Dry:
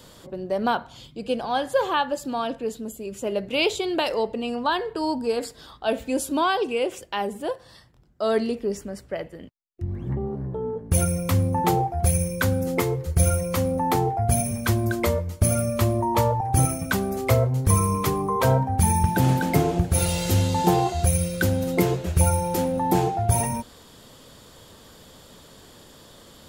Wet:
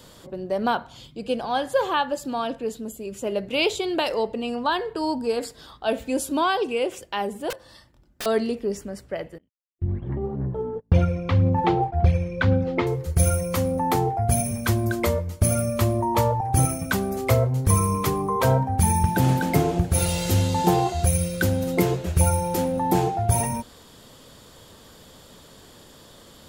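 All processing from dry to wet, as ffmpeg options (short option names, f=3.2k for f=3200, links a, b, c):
-filter_complex "[0:a]asettb=1/sr,asplit=3[a][b][c];[a]atrim=end=7.504[d];[b]atrim=start=7.5:end=8.26,asetpts=PTS-STARTPTS,afade=t=in:d=0.004:c=qsin,afade=t=out:st=0.756:d=0.004:c=qsin,aecho=1:1:3.4:0.39,atrim=end_sample=33516,aeval=exprs='(mod(21.1*val(0)+1,2)-1)/21.1':c=same[e];[c]atrim=start=8.256[f];[d][e]acrossfade=d=0.004:c1=hsin:c2=qsin[g];[g][f]acrossfade=d=0.004:c1=qsin:c2=hsin,asettb=1/sr,asplit=3[h][i][j];[h]atrim=end=9.384[k];[i]atrim=start=9.38:end=12.87,asetpts=PTS-STARTPTS,afade=t=in:d=0.004:c=qsin,afade=t=out:st=3.486:d=0.004:c=qsin,lowpass=f=3.8k:w=0.5412,lowpass=f=3.8k:w=1.3066,agate=range=-29dB:threshold=-34dB:ratio=16:release=100:detection=peak,aphaser=in_gain=1:out_gain=1:delay=3.2:decay=0.37:speed=1.9:type=sinusoidal[l];[j]atrim=start=12.866[m];[k][l]acrossfade=d=0.004:c1=hsin:c2=qsin[n];[n][m]acrossfade=d=0.004:c1=qsin:c2=hsin"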